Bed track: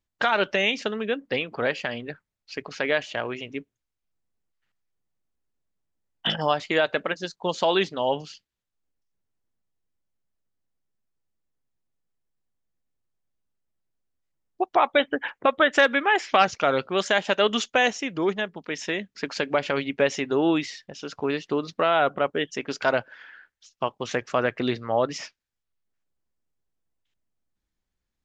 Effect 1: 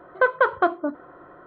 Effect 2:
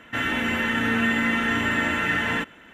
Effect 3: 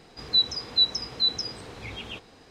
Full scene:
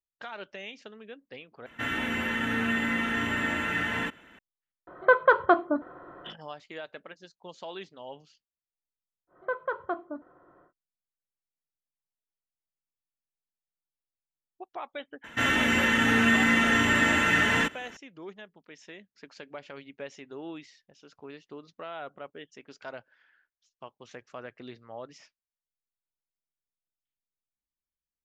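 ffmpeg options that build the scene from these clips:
-filter_complex "[2:a]asplit=2[a][b];[1:a]asplit=2[c][d];[0:a]volume=-18.5dB[e];[d]highshelf=f=2.6k:g=-9[f];[b]equalizer=f=6.4k:t=o:w=1.2:g=7.5[g];[e]asplit=2[h][i];[h]atrim=end=1.664[j];[a]atrim=end=2.73,asetpts=PTS-STARTPTS,volume=-5.5dB[k];[i]atrim=start=4.386[l];[c]atrim=end=1.46,asetpts=PTS-STARTPTS,volume=-0.5dB,afade=t=in:d=0.004:c=hsin,afade=t=out:st=1.456:d=0.004:c=hsin,adelay=4870[m];[f]atrim=end=1.46,asetpts=PTS-STARTPTS,volume=-11.5dB,afade=t=in:d=0.1,afade=t=out:st=1.36:d=0.1,adelay=9270[n];[g]atrim=end=2.73,asetpts=PTS-STARTPTS,afade=t=in:d=0.004:c=hsin,afade=t=out:st=2.726:d=0.004:c=hsin,adelay=672084S[o];[j][k]acrossfade=d=0.004:c1=hsin:c2=hsin[p];[p][l]acrossfade=d=0.004:c1=hsin:c2=hsin[q];[q][m][n][o]amix=inputs=4:normalize=0"

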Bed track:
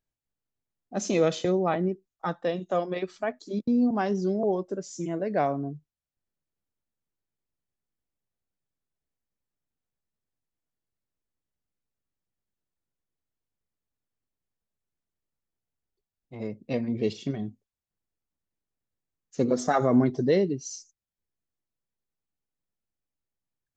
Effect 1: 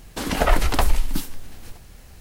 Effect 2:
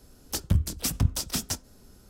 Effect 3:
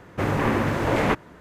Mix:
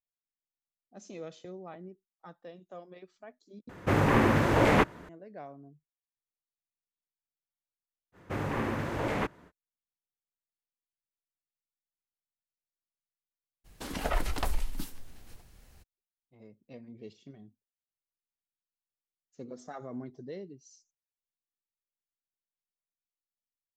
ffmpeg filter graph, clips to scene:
-filter_complex "[3:a]asplit=2[a][b];[0:a]volume=-19.5dB,asplit=2[c][d];[c]atrim=end=3.694[e];[a]atrim=end=1.4,asetpts=PTS-STARTPTS,volume=-1dB[f];[d]atrim=start=5.086[g];[b]atrim=end=1.4,asetpts=PTS-STARTPTS,volume=-9.5dB,afade=t=in:d=0.05,afade=t=out:st=1.35:d=0.05,adelay=8120[h];[1:a]atrim=end=2.2,asetpts=PTS-STARTPTS,volume=-12dB,afade=t=in:d=0.02,afade=t=out:st=2.18:d=0.02,adelay=601524S[i];[e][f]acrossfade=d=0.004:c1=hsin:c2=hsin[j];[j][g]acrossfade=d=0.004:c1=hsin:c2=hsin[k];[k][h][i]amix=inputs=3:normalize=0"

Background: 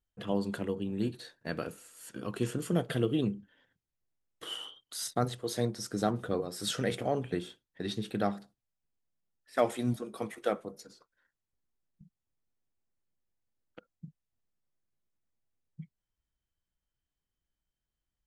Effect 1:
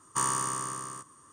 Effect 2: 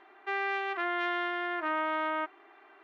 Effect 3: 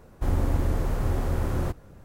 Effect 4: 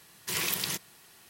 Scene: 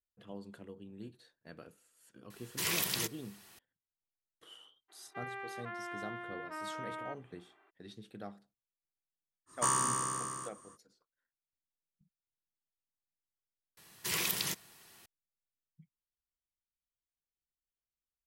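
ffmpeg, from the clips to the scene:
-filter_complex "[4:a]asplit=2[a][b];[0:a]volume=-15.5dB[c];[a]asoftclip=type=tanh:threshold=-11dB[d];[2:a]acrossover=split=2600[e][f];[f]acompressor=threshold=-51dB:ratio=4:attack=1:release=60[g];[e][g]amix=inputs=2:normalize=0[h];[c]asplit=2[i][j];[i]atrim=end=13.774[k];[b]atrim=end=1.29,asetpts=PTS-STARTPTS,volume=-3dB[l];[j]atrim=start=15.056[m];[d]atrim=end=1.29,asetpts=PTS-STARTPTS,volume=-2.5dB,afade=t=in:d=0.004:c=hsin,afade=t=out:st=1.286:d=0.004:c=hsin,adelay=2300[n];[h]atrim=end=2.83,asetpts=PTS-STARTPTS,volume=-11dB,afade=t=in:d=0.02,afade=t=out:st=2.81:d=0.02,adelay=4880[o];[1:a]atrim=end=1.32,asetpts=PTS-STARTPTS,volume=-1.5dB,afade=t=in:d=0.05,afade=t=out:st=1.27:d=0.05,adelay=417186S[p];[k][l]acrossfade=d=0.004:c1=hsin:c2=hsin[q];[q][m]acrossfade=d=0.004:c1=hsin:c2=hsin[r];[r][n][o][p]amix=inputs=4:normalize=0"

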